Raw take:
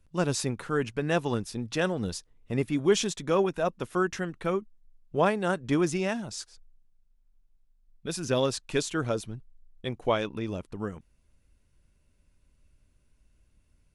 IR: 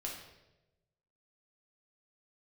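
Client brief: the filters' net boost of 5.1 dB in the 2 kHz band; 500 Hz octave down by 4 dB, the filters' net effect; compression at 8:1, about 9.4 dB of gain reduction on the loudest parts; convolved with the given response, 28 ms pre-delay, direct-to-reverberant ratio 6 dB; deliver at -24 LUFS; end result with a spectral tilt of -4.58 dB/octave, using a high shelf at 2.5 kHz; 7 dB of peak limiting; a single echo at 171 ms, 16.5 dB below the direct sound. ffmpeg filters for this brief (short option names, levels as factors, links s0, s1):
-filter_complex "[0:a]equalizer=f=500:t=o:g=-5.5,equalizer=f=2000:t=o:g=9,highshelf=f=2500:g=-3.5,acompressor=threshold=0.0316:ratio=8,alimiter=level_in=1.33:limit=0.0631:level=0:latency=1,volume=0.75,aecho=1:1:171:0.15,asplit=2[s0][s1];[1:a]atrim=start_sample=2205,adelay=28[s2];[s1][s2]afir=irnorm=-1:irlink=0,volume=0.501[s3];[s0][s3]amix=inputs=2:normalize=0,volume=4.47"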